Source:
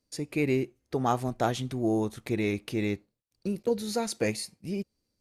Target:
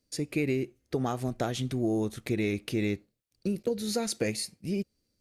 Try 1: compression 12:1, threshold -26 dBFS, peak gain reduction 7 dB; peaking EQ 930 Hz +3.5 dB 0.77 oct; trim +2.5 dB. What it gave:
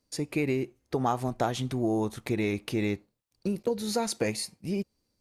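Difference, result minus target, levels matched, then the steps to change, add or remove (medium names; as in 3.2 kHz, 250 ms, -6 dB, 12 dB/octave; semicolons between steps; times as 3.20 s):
1 kHz band +5.5 dB
change: peaking EQ 930 Hz -6.5 dB 0.77 oct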